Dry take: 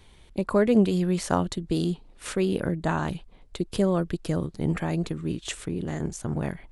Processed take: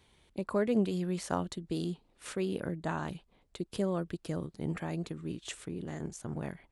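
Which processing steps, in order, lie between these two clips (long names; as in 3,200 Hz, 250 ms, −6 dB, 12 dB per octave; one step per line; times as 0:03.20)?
high-pass filter 96 Hz 6 dB per octave
level −8 dB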